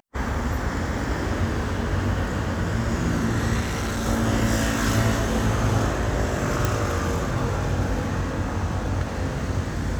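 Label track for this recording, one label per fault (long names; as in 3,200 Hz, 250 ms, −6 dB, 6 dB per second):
3.600000	4.060000	clipping −23 dBFS
6.650000	6.650000	click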